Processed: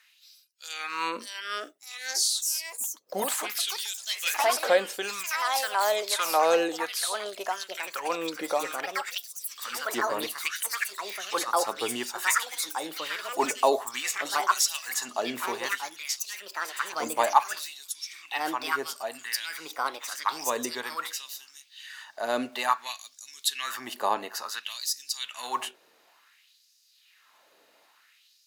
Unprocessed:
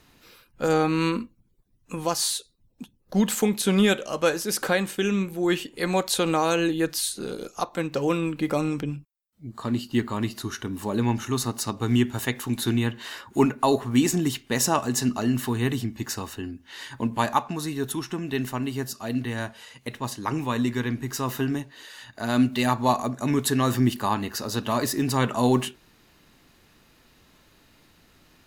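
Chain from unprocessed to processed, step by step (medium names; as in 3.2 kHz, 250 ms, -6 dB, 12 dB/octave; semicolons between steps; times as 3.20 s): LFO high-pass sine 0.57 Hz 500–5400 Hz; ever faster or slower copies 714 ms, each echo +4 st, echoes 3; trim -3.5 dB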